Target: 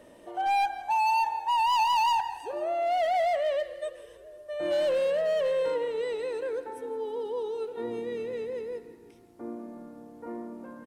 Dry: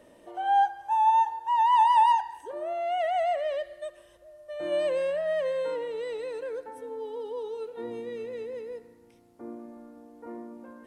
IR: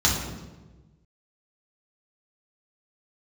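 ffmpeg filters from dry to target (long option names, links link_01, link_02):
-filter_complex "[0:a]asoftclip=type=hard:threshold=-25.5dB,asplit=6[link_01][link_02][link_03][link_04][link_05][link_06];[link_02]adelay=165,afreqshift=-37,volume=-17dB[link_07];[link_03]adelay=330,afreqshift=-74,volume=-21.9dB[link_08];[link_04]adelay=495,afreqshift=-111,volume=-26.8dB[link_09];[link_05]adelay=660,afreqshift=-148,volume=-31.6dB[link_10];[link_06]adelay=825,afreqshift=-185,volume=-36.5dB[link_11];[link_01][link_07][link_08][link_09][link_10][link_11]amix=inputs=6:normalize=0,volume=2.5dB"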